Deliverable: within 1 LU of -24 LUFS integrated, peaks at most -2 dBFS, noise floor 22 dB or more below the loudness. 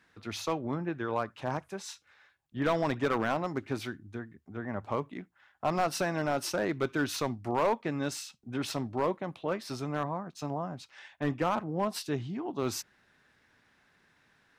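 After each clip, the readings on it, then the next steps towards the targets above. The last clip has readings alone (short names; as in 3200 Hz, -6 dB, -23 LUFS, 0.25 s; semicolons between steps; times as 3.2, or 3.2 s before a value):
clipped 0.5%; flat tops at -21.0 dBFS; loudness -33.0 LUFS; peak -21.0 dBFS; loudness target -24.0 LUFS
-> clip repair -21 dBFS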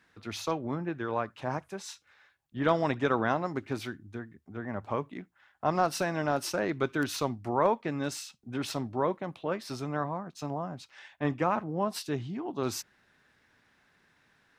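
clipped 0.0%; loudness -32.0 LUFS; peak -12.0 dBFS; loudness target -24.0 LUFS
-> gain +8 dB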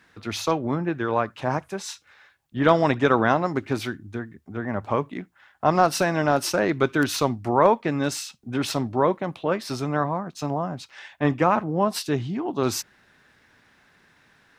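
loudness -24.0 LUFS; peak -4.0 dBFS; noise floor -61 dBFS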